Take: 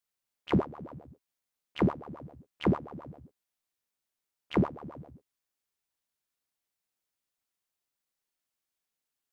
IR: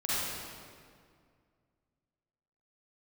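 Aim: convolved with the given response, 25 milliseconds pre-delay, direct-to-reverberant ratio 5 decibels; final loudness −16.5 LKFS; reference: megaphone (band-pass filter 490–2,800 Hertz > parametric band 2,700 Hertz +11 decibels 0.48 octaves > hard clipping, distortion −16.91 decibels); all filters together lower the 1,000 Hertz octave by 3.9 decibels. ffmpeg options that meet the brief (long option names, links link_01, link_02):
-filter_complex "[0:a]equalizer=frequency=1000:width_type=o:gain=-4.5,asplit=2[link_01][link_02];[1:a]atrim=start_sample=2205,adelay=25[link_03];[link_02][link_03]afir=irnorm=-1:irlink=0,volume=-13.5dB[link_04];[link_01][link_04]amix=inputs=2:normalize=0,highpass=490,lowpass=2800,equalizer=frequency=2700:width_type=o:width=0.48:gain=11,asoftclip=type=hard:threshold=-25.5dB,volume=24.5dB"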